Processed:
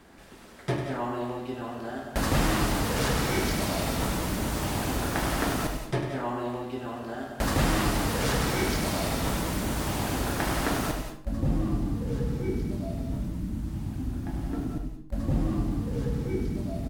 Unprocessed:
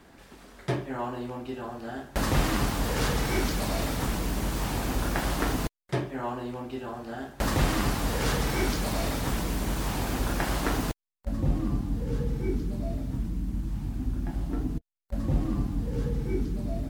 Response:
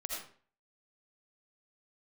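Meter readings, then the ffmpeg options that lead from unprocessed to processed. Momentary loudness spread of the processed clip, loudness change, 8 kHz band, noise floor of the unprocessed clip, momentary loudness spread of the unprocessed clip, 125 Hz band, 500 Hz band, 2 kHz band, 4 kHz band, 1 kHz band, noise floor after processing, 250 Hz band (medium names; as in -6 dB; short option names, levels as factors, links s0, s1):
9 LU, +1.0 dB, +2.0 dB, -55 dBFS, 9 LU, +0.5 dB, +1.5 dB, +1.5 dB, +1.5 dB, +1.5 dB, -44 dBFS, +1.5 dB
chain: -filter_complex "[0:a]equalizer=f=9600:t=o:w=0.29:g=2,aecho=1:1:74|148|222:0.2|0.0698|0.0244,asplit=2[s0][s1];[1:a]atrim=start_sample=2205,adelay=99[s2];[s1][s2]afir=irnorm=-1:irlink=0,volume=0.562[s3];[s0][s3]amix=inputs=2:normalize=0"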